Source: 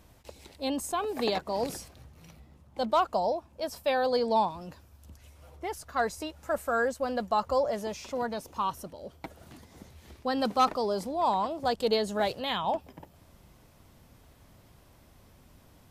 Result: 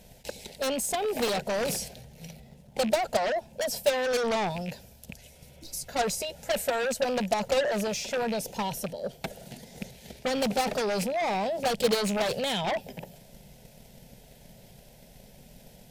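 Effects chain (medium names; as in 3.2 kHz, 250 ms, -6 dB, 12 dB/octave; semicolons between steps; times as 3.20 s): rattle on loud lows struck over -42 dBFS, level -34 dBFS; static phaser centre 310 Hz, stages 6; transient shaper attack +9 dB, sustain +5 dB; in parallel at -12 dB: sine folder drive 16 dB, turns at -14 dBFS; on the sum: spectral replace 5.41–5.85 s, 340–3700 Hz before; trim -3.5 dB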